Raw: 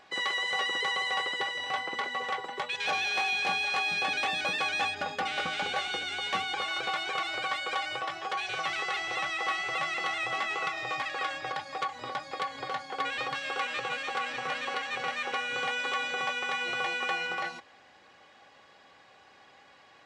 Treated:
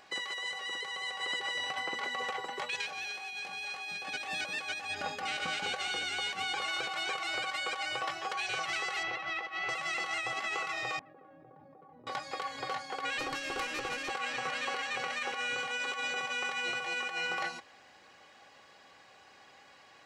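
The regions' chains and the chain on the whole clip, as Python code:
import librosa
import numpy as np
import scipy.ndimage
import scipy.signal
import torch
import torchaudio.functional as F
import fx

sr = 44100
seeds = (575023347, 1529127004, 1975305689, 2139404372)

y = fx.chain(x, sr, fx.air_absorb(metres=220.0),
    fx.over_compress(threshold_db=-36.0, ratio=-0.5), at=(9.03, 9.69))
y = fx.chain(y, sr, fx.ladder_bandpass(hz=210.0, resonance_pct=25),
    fx.env_flatten(amount_pct=100), at=(10.99, 12.07))
y = fx.chain(y, sr, fx.peak_eq(hz=320.0, db=14.5, octaves=0.57),
    fx.tube_stage(drive_db=28.0, bias=0.5), at=(13.19, 14.1))
y = fx.high_shelf(y, sr, hz=5000.0, db=8.0)
y = fx.notch(y, sr, hz=3500.0, q=11.0)
y = fx.over_compress(y, sr, threshold_db=-32.0, ratio=-0.5)
y = y * librosa.db_to_amplitude(-3.0)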